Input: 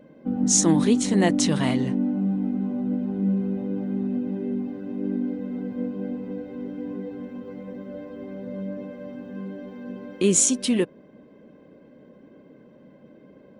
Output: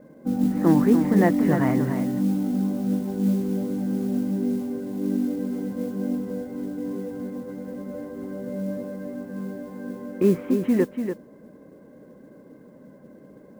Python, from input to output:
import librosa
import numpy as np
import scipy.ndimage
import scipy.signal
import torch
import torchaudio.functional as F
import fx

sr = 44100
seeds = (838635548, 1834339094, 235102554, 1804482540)

y = scipy.signal.sosfilt(scipy.signal.butter(6, 2000.0, 'lowpass', fs=sr, output='sos'), x)
y = fx.mod_noise(y, sr, seeds[0], snr_db=28)
y = y + 10.0 ** (-7.5 / 20.0) * np.pad(y, (int(290 * sr / 1000.0), 0))[:len(y)]
y = y * 10.0 ** (1.5 / 20.0)